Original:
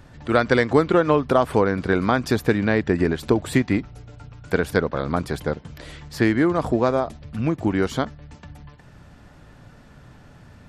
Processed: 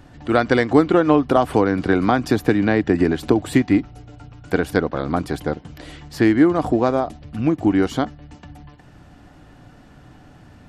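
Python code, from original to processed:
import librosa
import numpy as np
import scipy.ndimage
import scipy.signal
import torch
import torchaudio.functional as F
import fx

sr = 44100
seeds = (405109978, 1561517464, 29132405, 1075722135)

y = fx.small_body(x, sr, hz=(300.0, 740.0, 2900.0), ring_ms=45, db=8)
y = fx.band_squash(y, sr, depth_pct=40, at=(1.36, 3.44))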